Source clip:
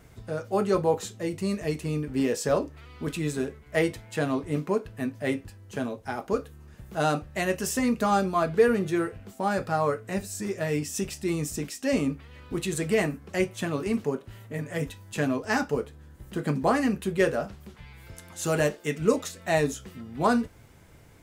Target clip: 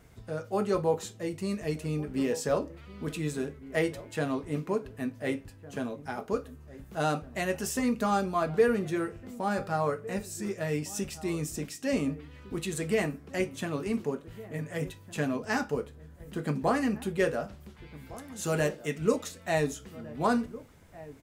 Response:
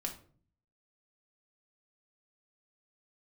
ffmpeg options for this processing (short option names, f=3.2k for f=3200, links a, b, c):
-filter_complex "[0:a]asplit=2[a][b];[b]adelay=1458,volume=-17dB,highshelf=f=4k:g=-32.8[c];[a][c]amix=inputs=2:normalize=0,asplit=2[d][e];[1:a]atrim=start_sample=2205[f];[e][f]afir=irnorm=-1:irlink=0,volume=-13.5dB[g];[d][g]amix=inputs=2:normalize=0,volume=-5dB"